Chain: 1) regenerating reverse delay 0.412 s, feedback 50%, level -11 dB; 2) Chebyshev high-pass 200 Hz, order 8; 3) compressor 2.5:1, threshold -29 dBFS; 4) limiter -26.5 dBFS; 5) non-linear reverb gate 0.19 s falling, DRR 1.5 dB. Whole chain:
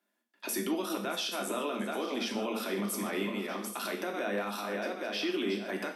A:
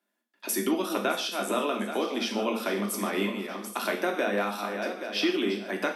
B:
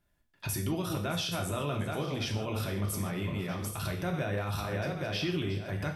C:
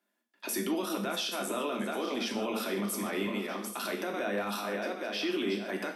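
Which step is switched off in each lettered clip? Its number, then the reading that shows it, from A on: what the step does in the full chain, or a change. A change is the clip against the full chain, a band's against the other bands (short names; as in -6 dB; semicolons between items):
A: 4, mean gain reduction 3.0 dB; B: 2, 125 Hz band +16.5 dB; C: 3, mean gain reduction 4.0 dB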